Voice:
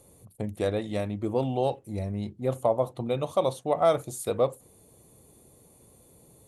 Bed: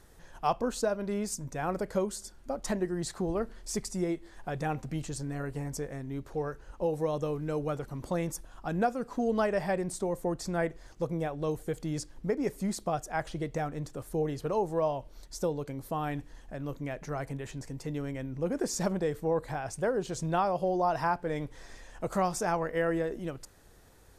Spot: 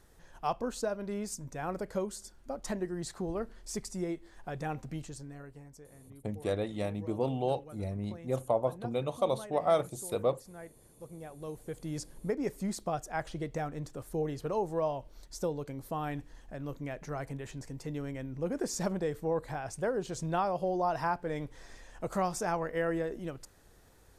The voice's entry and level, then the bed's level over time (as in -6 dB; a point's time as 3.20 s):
5.85 s, -4.5 dB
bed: 4.92 s -4 dB
5.77 s -17.5 dB
10.91 s -17.5 dB
12.02 s -2.5 dB